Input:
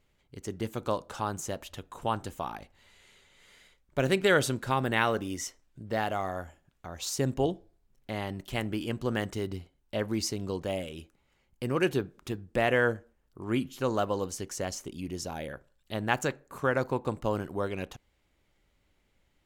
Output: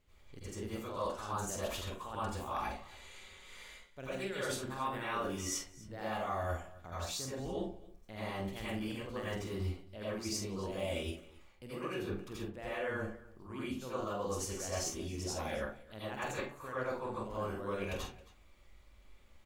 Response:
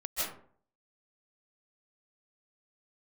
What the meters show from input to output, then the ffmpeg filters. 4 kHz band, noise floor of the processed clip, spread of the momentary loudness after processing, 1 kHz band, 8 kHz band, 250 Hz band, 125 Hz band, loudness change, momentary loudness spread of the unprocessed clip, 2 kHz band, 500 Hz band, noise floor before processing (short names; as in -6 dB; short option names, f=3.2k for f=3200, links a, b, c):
-6.0 dB, -60 dBFS, 11 LU, -6.5 dB, -2.5 dB, -8.5 dB, -7.5 dB, -8.0 dB, 15 LU, -10.0 dB, -8.5 dB, -72 dBFS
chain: -filter_complex "[0:a]areverse,acompressor=threshold=-39dB:ratio=12,areverse,aecho=1:1:46|270:0.447|0.1[a];[1:a]atrim=start_sample=2205,asetrate=79380,aresample=44100[b];[a][b]afir=irnorm=-1:irlink=0,volume=5dB"